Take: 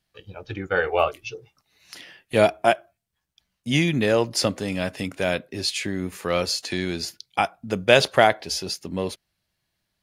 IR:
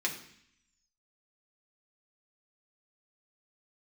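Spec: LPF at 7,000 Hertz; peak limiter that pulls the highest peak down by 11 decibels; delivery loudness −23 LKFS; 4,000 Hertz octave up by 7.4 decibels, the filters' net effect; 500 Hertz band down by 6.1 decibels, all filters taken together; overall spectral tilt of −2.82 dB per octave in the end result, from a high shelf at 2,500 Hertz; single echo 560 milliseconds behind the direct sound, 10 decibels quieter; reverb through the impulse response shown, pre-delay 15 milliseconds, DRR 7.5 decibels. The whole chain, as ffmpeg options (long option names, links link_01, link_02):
-filter_complex "[0:a]lowpass=7000,equalizer=frequency=500:width_type=o:gain=-8.5,highshelf=frequency=2500:gain=5.5,equalizer=frequency=4000:width_type=o:gain=5,alimiter=limit=-9.5dB:level=0:latency=1,aecho=1:1:560:0.316,asplit=2[link_01][link_02];[1:a]atrim=start_sample=2205,adelay=15[link_03];[link_02][link_03]afir=irnorm=-1:irlink=0,volume=-13.5dB[link_04];[link_01][link_04]amix=inputs=2:normalize=0,volume=0.5dB"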